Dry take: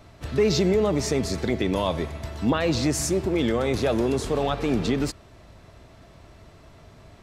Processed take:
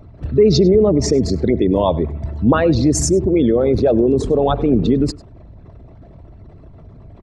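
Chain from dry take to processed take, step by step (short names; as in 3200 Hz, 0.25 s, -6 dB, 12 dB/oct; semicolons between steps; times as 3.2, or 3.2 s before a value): formant sharpening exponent 2; outdoor echo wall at 17 m, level -21 dB; gain +9 dB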